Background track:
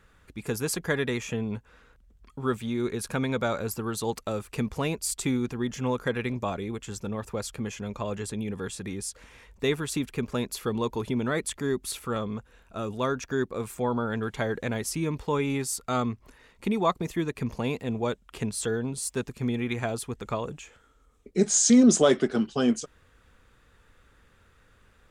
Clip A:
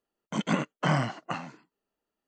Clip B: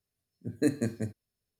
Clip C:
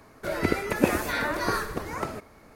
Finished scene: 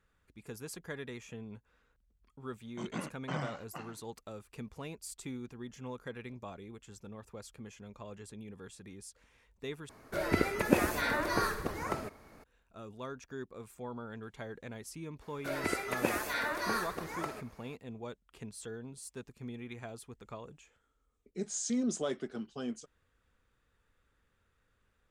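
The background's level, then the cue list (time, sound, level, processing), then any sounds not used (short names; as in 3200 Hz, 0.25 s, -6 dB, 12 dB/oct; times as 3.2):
background track -15 dB
2.45 add A -12.5 dB
9.89 replace with C -4 dB
15.21 add C -5 dB + low shelf 330 Hz -10.5 dB
not used: B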